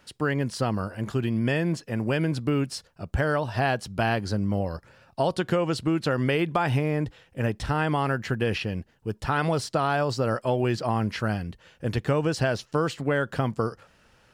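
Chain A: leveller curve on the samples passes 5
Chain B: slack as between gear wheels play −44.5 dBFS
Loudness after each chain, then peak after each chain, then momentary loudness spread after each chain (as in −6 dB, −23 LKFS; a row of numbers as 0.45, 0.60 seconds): −15.5, −27.0 LKFS; −9.5, −9.5 dBFS; 5, 8 LU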